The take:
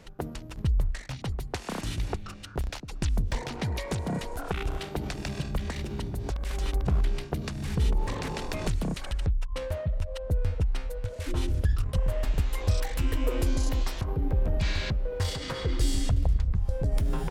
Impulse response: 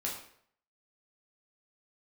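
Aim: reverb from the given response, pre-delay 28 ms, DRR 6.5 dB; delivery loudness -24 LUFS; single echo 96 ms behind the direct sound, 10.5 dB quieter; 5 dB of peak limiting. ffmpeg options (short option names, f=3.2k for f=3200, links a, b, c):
-filter_complex "[0:a]alimiter=limit=-19dB:level=0:latency=1,aecho=1:1:96:0.299,asplit=2[a][b];[1:a]atrim=start_sample=2205,adelay=28[c];[b][c]afir=irnorm=-1:irlink=0,volume=-9dB[d];[a][d]amix=inputs=2:normalize=0,volume=7dB"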